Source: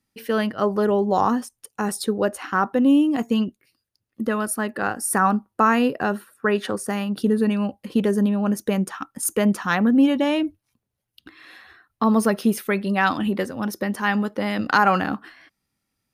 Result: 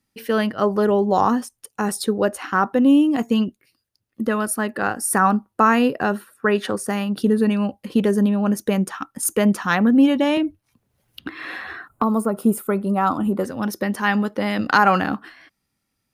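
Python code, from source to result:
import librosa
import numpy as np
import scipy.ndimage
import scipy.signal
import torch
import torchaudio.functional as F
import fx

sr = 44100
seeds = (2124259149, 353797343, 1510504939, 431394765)

y = fx.spec_box(x, sr, start_s=11.88, length_s=1.56, low_hz=1500.0, high_hz=6700.0, gain_db=-14)
y = fx.band_squash(y, sr, depth_pct=70, at=(10.37, 12.37))
y = F.gain(torch.from_numpy(y), 2.0).numpy()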